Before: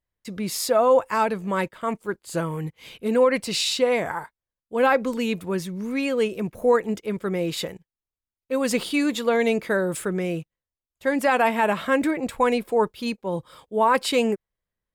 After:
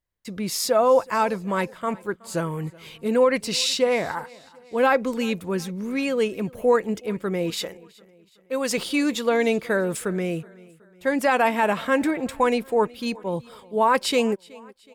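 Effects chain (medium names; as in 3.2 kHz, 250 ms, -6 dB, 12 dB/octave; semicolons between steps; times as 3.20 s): 7.50–8.78 s: peaking EQ 120 Hz -12.5 dB 1.7 oct; feedback delay 372 ms, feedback 50%, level -23.5 dB; dynamic bell 5.7 kHz, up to +4 dB, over -48 dBFS, Q 3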